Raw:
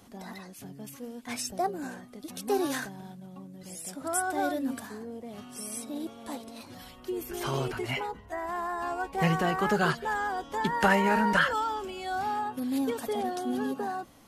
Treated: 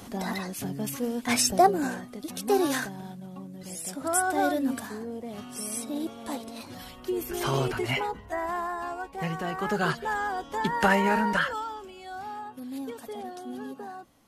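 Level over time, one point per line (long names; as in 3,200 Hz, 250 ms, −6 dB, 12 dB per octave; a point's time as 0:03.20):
0:01.55 +11 dB
0:02.34 +4 dB
0:08.43 +4 dB
0:09.29 −6.5 dB
0:10.00 +1 dB
0:11.10 +1 dB
0:11.90 −7 dB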